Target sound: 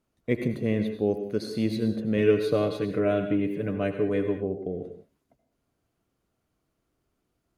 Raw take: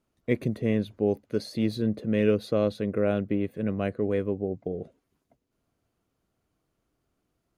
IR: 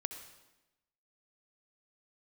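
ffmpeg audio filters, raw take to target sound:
-filter_complex "[0:a]asettb=1/sr,asplit=3[a][b][c];[a]atrim=end=2.174[d];[b]atrim=start=2.17:end=4.37,asetpts=PTS-STARTPTS,afade=t=in:d=0.004:c=qsin,afade=t=out:st=2.196:d=0.004:c=qsin,aecho=1:1:6.8:0.71,atrim=end_sample=97020[e];[c]atrim=start=4.366[f];[d][e]acrossfade=d=0.004:c1=hsin:c2=qsin[g];[g][f]acrossfade=d=0.004:c1=qsin:c2=hsin[h];[1:a]atrim=start_sample=2205,afade=t=out:st=0.23:d=0.01,atrim=end_sample=10584,asetrate=37044,aresample=44100[i];[h][i]afir=irnorm=-1:irlink=0"

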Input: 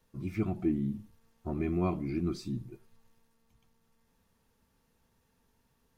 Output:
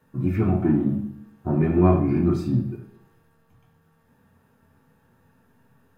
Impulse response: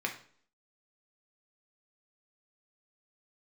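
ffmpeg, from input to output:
-filter_complex "[0:a]asplit=2[a][b];[b]asoftclip=type=hard:threshold=-31.5dB,volume=-8dB[c];[a][c]amix=inputs=2:normalize=0,equalizer=f=5k:t=o:w=2.9:g=-8[d];[1:a]atrim=start_sample=2205,asetrate=31752,aresample=44100[e];[d][e]afir=irnorm=-1:irlink=0,volume=4.5dB"

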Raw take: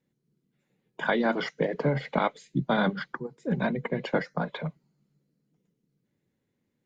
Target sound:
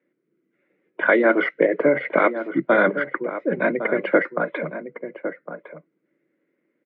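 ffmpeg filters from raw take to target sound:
-filter_complex "[0:a]highpass=f=220:w=0.5412,highpass=f=220:w=1.3066,equalizer=f=220:t=q:w=4:g=-6,equalizer=f=330:t=q:w=4:g=9,equalizer=f=570:t=q:w=4:g=7,equalizer=f=840:t=q:w=4:g=-8,equalizer=f=1.4k:t=q:w=4:g=6,equalizer=f=2.1k:t=q:w=4:g=8,lowpass=f=2.5k:w=0.5412,lowpass=f=2.5k:w=1.3066,asplit=2[a][b];[b]adelay=1108,volume=-10dB,highshelf=f=4k:g=-24.9[c];[a][c]amix=inputs=2:normalize=0,volume=5.5dB"

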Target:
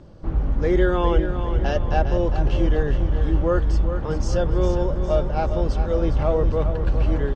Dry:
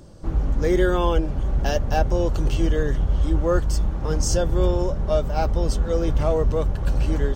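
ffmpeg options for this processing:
-af "lowpass=3.4k,aecho=1:1:406|812|1218|1624|2030:0.355|0.167|0.0784|0.0368|0.0173"

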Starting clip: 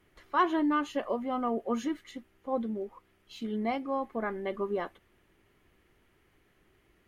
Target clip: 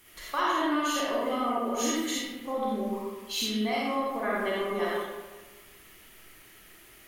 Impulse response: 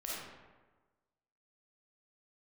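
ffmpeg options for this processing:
-filter_complex "[0:a]acompressor=threshold=-34dB:ratio=5,crystalizer=i=9:c=0[a];[1:a]atrim=start_sample=2205[b];[a][b]afir=irnorm=-1:irlink=0,volume=5dB"

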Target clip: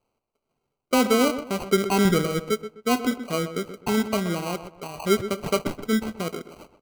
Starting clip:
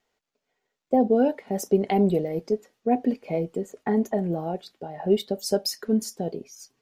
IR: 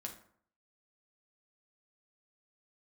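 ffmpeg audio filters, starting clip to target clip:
-filter_complex "[0:a]asettb=1/sr,asplit=3[a][b][c];[a]atrim=end=2.054[d];[b]atrim=start=2.05:end=2.48,asetpts=PTS-STARTPTS,afade=t=in:d=0.004:c=qsin,afade=t=out:st=0.426:d=0.004:c=qsin,lowshelf=f=120:g=11.5[e];[c]atrim=start=2.476[f];[d][e]acrossfade=d=0.004:c1=hsin:c2=qsin[g];[g][f]acrossfade=d=0.004:c1=qsin:c2=hsin,acrusher=samples=25:mix=1:aa=0.000001,asplit=2[h][i];[i]adelay=127,lowpass=f=2.2k:p=1,volume=-11dB,asplit=2[j][k];[k]adelay=127,lowpass=f=2.2k:p=1,volume=0.31,asplit=2[l][m];[m]adelay=127,lowpass=f=2.2k:p=1,volume=0.31[n];[h][j][l][n]amix=inputs=4:normalize=0"

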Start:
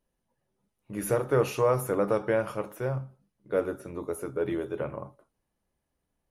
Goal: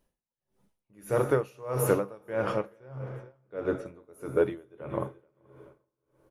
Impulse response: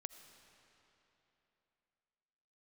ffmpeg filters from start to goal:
-filter_complex "[0:a]asettb=1/sr,asplit=3[a][b][c];[a]atrim=end=2.334[d];[b]atrim=start=2.33:end=3.86,asetpts=PTS-STARTPTS,afade=t=in:d=0.004:c=qsin,afade=t=out:st=1.526:d=0.004:c=qsin,lowpass=5.2k[e];[c]atrim=start=3.856[f];[d][e]acrossfade=d=0.004:c1=hsin:c2=qsin[g];[g][f]acrossfade=d=0.004:c1=qsin:c2=hsin,aecho=1:1:431|862:0.15|0.0344,asplit=2[h][i];[1:a]atrim=start_sample=2205,asetrate=48510,aresample=44100[j];[i][j]afir=irnorm=-1:irlink=0,volume=6.5dB[k];[h][k]amix=inputs=2:normalize=0,aeval=exprs='val(0)*pow(10,-29*(0.5-0.5*cos(2*PI*1.6*n/s))/20)':c=same"

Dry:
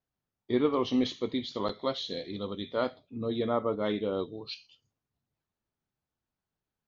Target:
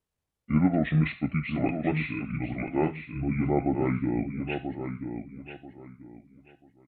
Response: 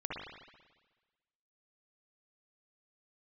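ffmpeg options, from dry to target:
-filter_complex "[0:a]asetrate=26990,aresample=44100,atempo=1.63392,asplit=2[a][b];[b]adelay=987,lowpass=f=3.3k:p=1,volume=-7.5dB,asplit=2[c][d];[d]adelay=987,lowpass=f=3.3k:p=1,volume=0.25,asplit=2[e][f];[f]adelay=987,lowpass=f=3.3k:p=1,volume=0.25[g];[a][c][e][g]amix=inputs=4:normalize=0,volume=3.5dB"

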